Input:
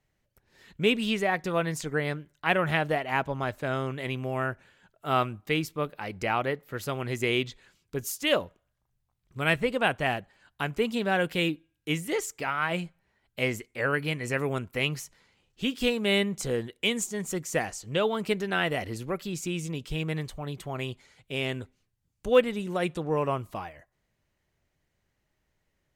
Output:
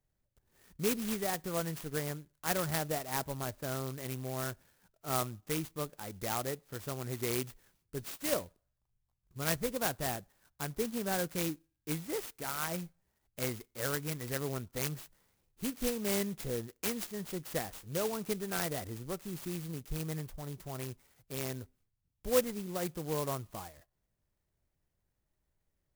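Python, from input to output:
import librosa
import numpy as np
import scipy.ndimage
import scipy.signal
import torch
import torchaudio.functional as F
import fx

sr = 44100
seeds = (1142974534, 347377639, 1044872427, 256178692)

y = fx.low_shelf(x, sr, hz=86.0, db=7.0)
y = fx.clock_jitter(y, sr, seeds[0], jitter_ms=0.1)
y = F.gain(torch.from_numpy(y), -8.0).numpy()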